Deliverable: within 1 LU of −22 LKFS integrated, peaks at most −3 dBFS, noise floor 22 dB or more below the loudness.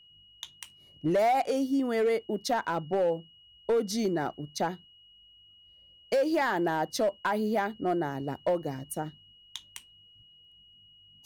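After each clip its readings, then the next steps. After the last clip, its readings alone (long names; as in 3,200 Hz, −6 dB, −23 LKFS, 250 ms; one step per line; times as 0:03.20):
share of clipped samples 1.1%; peaks flattened at −21.0 dBFS; interfering tone 2,900 Hz; level of the tone −55 dBFS; integrated loudness −29.5 LKFS; sample peak −21.0 dBFS; target loudness −22.0 LKFS
→ clipped peaks rebuilt −21 dBFS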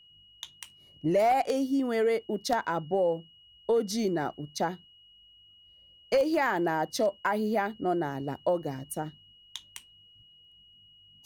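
share of clipped samples 0.0%; interfering tone 2,900 Hz; level of the tone −55 dBFS
→ notch filter 2,900 Hz, Q 30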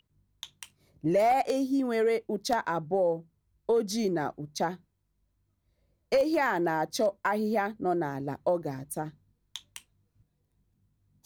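interfering tone none found; integrated loudness −29.0 LKFS; sample peak −12.5 dBFS; target loudness −22.0 LKFS
→ level +7 dB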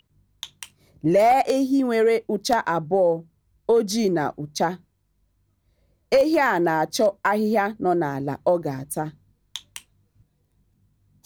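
integrated loudness −22.0 LKFS; sample peak −5.5 dBFS; background noise floor −69 dBFS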